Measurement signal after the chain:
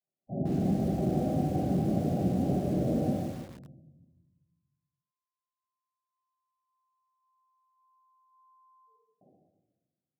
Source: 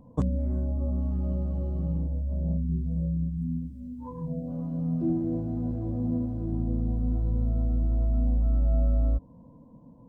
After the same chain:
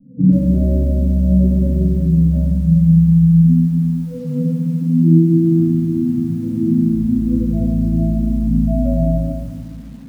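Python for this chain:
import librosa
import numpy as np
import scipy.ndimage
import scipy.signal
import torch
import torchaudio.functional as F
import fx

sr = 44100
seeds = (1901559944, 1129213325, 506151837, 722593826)

p1 = fx.spec_quant(x, sr, step_db=15)
p2 = scipy.signal.sosfilt(scipy.signal.butter(2, 130.0, 'highpass', fs=sr, output='sos'), p1)
p3 = fx.notch(p2, sr, hz=440.0, q=14.0)
p4 = fx.spec_gate(p3, sr, threshold_db=-10, keep='strong')
p5 = fx.dynamic_eq(p4, sr, hz=420.0, q=2.0, threshold_db=-46.0, ratio=4.0, max_db=3)
p6 = fx.rider(p5, sr, range_db=3, speed_s=2.0)
p7 = p5 + (p6 * librosa.db_to_amplitude(-1.0))
p8 = scipy.signal.sosfilt(scipy.signal.cheby1(10, 1.0, 790.0, 'lowpass', fs=sr, output='sos'), p7)
p9 = fx.room_shoebox(p8, sr, seeds[0], volume_m3=560.0, walls='mixed', distance_m=7.6)
p10 = fx.echo_crushed(p9, sr, ms=145, feedback_pct=35, bits=6, wet_db=-8)
y = p10 * librosa.db_to_amplitude(-7.0)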